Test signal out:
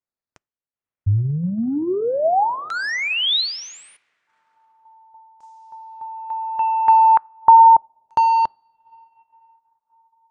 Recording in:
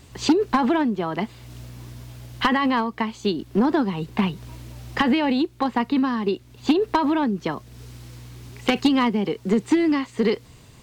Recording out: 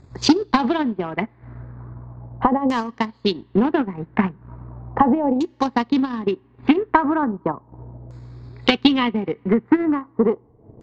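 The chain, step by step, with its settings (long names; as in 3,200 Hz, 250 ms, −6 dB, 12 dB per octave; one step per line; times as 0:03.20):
adaptive Wiener filter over 15 samples
parametric band 110 Hz +5 dB 0.49 octaves
coupled-rooms reverb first 0.33 s, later 3.7 s, from −18 dB, DRR 16.5 dB
transient designer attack +4 dB, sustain −11 dB
auto-filter low-pass saw down 0.37 Hz 620–6,900 Hz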